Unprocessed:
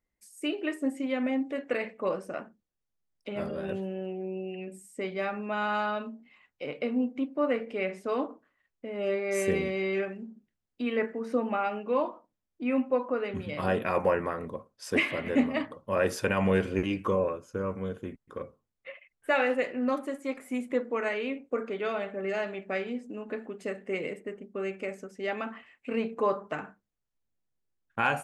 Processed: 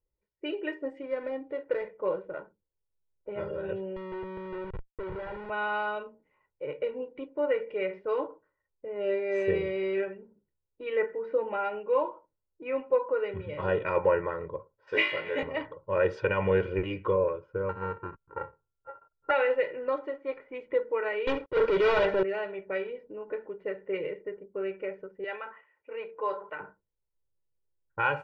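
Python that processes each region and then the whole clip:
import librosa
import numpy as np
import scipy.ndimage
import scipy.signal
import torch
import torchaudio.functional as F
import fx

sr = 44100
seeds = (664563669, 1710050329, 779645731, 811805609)

y = fx.chain(x, sr, fx.median_filter(points=15),
    fx.air_absorb(metres=170.0), at=(1.01, 3.29))
y = fx.chain(y, sr, fx.low_shelf(hz=110.0, db=-2.5),
    fx.schmitt(flips_db=-40.5), at=(3.96, 5.5))
y = fx.chain(y, sr, fx.riaa(side='recording'),
    fx.room_flutter(wall_m=3.2, rt60_s=0.22), at=(14.87, 15.43))
y = fx.chain(y, sr, fx.sample_sort(block=32),
    fx.high_shelf_res(hz=2300.0, db=-12.5, q=1.5), at=(17.69, 19.31))
y = fx.chain(y, sr, fx.leveller(passes=5),
    fx.transient(attack_db=-12, sustain_db=-6),
    fx.high_shelf(hz=8200.0, db=9.5), at=(21.27, 22.23))
y = fx.chain(y, sr, fx.highpass(hz=1000.0, slope=6),
    fx.high_shelf(hz=4200.0, db=5.5),
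    fx.sustainer(db_per_s=120.0), at=(25.24, 26.6))
y = fx.env_lowpass(y, sr, base_hz=820.0, full_db=-24.0)
y = scipy.signal.sosfilt(scipy.signal.bessel(4, 2500.0, 'lowpass', norm='mag', fs=sr, output='sos'), y)
y = y + 0.95 * np.pad(y, (int(2.1 * sr / 1000.0), 0))[:len(y)]
y = y * librosa.db_to_amplitude(-3.0)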